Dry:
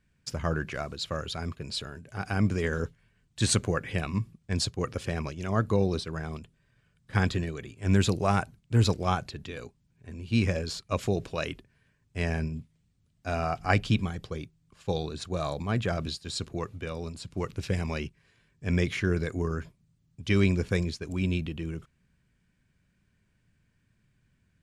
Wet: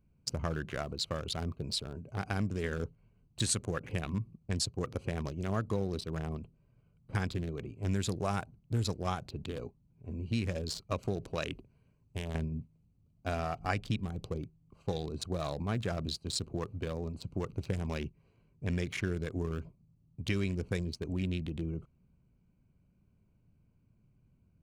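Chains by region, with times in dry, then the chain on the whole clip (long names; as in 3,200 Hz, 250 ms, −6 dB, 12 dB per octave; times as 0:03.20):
0:11.52–0:12.35: high-shelf EQ 3,400 Hz +6.5 dB + downward compressor 16 to 1, threshold −31 dBFS + highs frequency-modulated by the lows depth 0.15 ms
whole clip: adaptive Wiener filter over 25 samples; high-shelf EQ 6,500 Hz +10.5 dB; downward compressor 3 to 1, threshold −34 dBFS; level +2 dB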